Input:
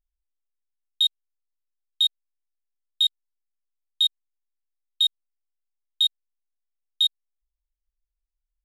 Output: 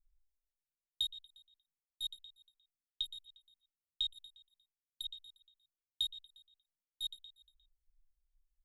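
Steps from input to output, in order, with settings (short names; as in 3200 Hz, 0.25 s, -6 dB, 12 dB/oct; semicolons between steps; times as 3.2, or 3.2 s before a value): passive tone stack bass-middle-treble 10-0-1; compressor, threshold -46 dBFS, peak gain reduction 7.5 dB; feedback echo 0.118 s, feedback 47%, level -13.5 dB; photocell phaser 2.8 Hz; gain +16 dB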